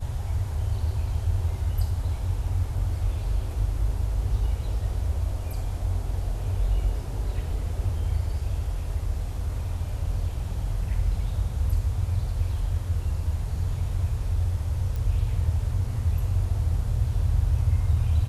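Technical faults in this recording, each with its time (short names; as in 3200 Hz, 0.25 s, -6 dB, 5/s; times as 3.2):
14.96 pop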